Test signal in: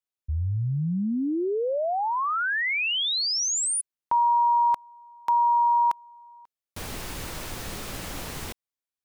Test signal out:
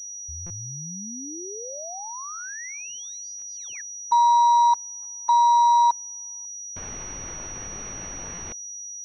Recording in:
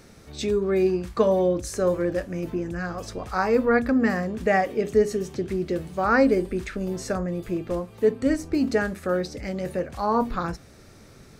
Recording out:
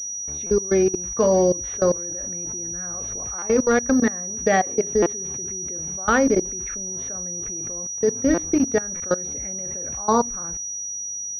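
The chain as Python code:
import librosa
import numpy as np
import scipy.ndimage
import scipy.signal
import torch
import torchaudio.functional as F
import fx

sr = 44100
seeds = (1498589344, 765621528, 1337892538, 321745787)

y = fx.level_steps(x, sr, step_db=22)
y = fx.buffer_glitch(y, sr, at_s=(0.46, 3.38, 5.02, 8.34, 8.96), block=256, repeats=6)
y = fx.pwm(y, sr, carrier_hz=5800.0)
y = F.gain(torch.from_numpy(y), 5.5).numpy()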